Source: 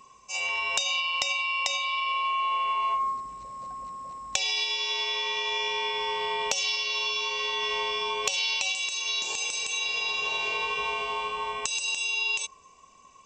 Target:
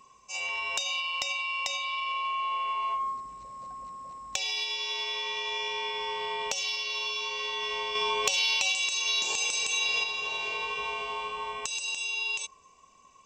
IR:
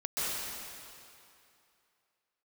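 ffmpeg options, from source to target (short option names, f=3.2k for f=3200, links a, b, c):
-filter_complex "[0:a]asplit=2[a][b];[b]asoftclip=type=tanh:threshold=-21dB,volume=-7dB[c];[a][c]amix=inputs=2:normalize=0,asettb=1/sr,asplit=3[d][e][f];[d]atrim=end=7.954[g];[e]atrim=start=7.95:end=10.04,asetpts=PTS-STARTPTS,afade=t=in:d=0.004:c=qsin,afade=t=out:st=2.086:d=0.004:c=qsin,acontrast=28[h];[f]atrim=start=10.036[i];[g][h]acrossfade=d=0.004:c1=hsin:c2=qsin[j];[j][i]acrossfade=d=0.004:c1=qsin:c2=hsin,volume=-6.5dB"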